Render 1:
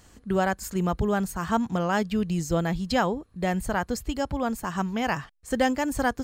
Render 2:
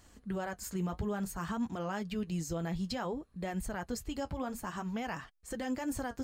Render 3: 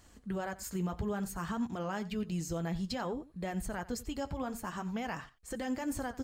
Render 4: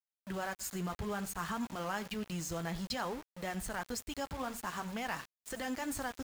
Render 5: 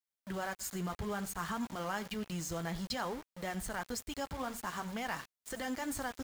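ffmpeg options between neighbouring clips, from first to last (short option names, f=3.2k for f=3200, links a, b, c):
-af "alimiter=limit=-21dB:level=0:latency=1:release=61,flanger=delay=2.8:depth=9.8:regen=-47:speed=0.57:shape=triangular,volume=-2dB"
-af "aecho=1:1:89:0.126"
-filter_complex "[0:a]acrossover=split=740[a][b];[b]acontrast=72[c];[a][c]amix=inputs=2:normalize=0,aeval=exprs='val(0)*gte(abs(val(0)),0.0106)':c=same,volume=-4dB"
-af "bandreject=f=2.6k:w=20"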